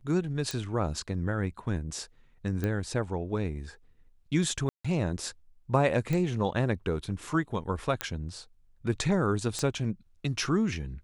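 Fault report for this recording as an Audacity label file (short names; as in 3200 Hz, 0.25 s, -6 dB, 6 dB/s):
0.510000	0.510000	pop
2.640000	2.640000	pop -18 dBFS
4.690000	4.840000	gap 0.155 s
6.130000	6.130000	pop
8.010000	8.010000	pop -11 dBFS
9.590000	9.590000	pop -17 dBFS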